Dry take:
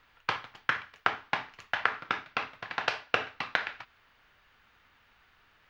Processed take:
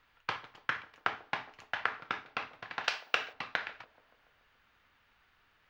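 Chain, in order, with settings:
0:02.84–0:03.33: spectral tilt +3 dB per octave
delay with a band-pass on its return 143 ms, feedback 64%, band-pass 410 Hz, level −16.5 dB
level −5 dB

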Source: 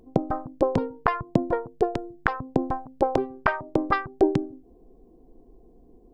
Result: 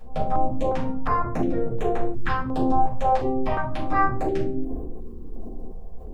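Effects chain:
0:01.77–0:02.45: parametric band 5,500 Hz +6 dB 2 octaves
transient designer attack −6 dB, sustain +11 dB
downward compressor 6 to 1, threshold −33 dBFS, peak gain reduction 16.5 dB
rectangular room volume 300 cubic metres, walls furnished, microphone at 6.2 metres
notch on a step sequencer 2.8 Hz 300–4,800 Hz

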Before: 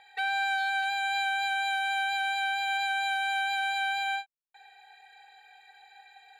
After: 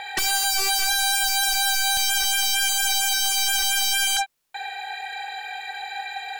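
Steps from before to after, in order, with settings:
0:01.97–0:04.17: high-pass filter 520 Hz 12 dB per octave
sine wavefolder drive 18 dB, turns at −19 dBFS

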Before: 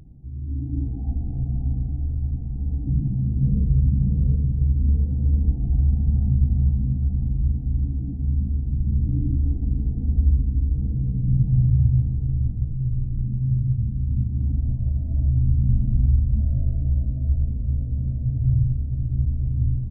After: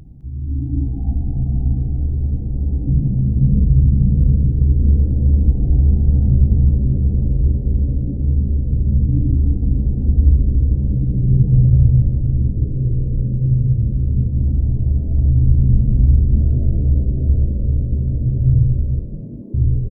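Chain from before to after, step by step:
0:18.99–0:19.54: Butterworth high-pass 550 Hz
echo with shifted repeats 208 ms, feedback 60%, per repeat −90 Hz, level −12.5 dB
level +6 dB

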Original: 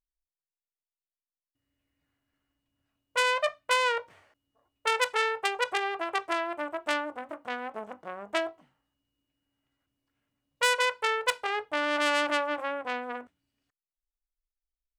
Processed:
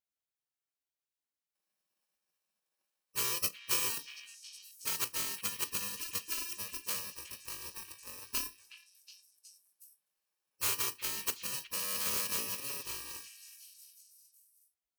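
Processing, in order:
samples in bit-reversed order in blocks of 64 samples
gate on every frequency bin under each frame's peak −15 dB weak
echo through a band-pass that steps 367 ms, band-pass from 2,600 Hz, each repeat 0.7 octaves, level −10 dB

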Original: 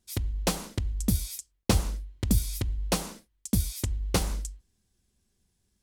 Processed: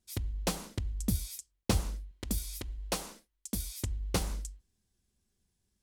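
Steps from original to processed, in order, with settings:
0:02.11–0:03.82: parametric band 110 Hz −12 dB 1.7 octaves
level −5 dB

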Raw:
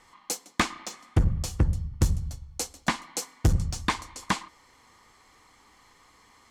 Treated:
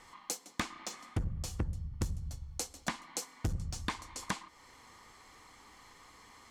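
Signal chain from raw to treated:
downward compressor 2.5 to 1, threshold −39 dBFS, peak gain reduction 14.5 dB
level +1 dB

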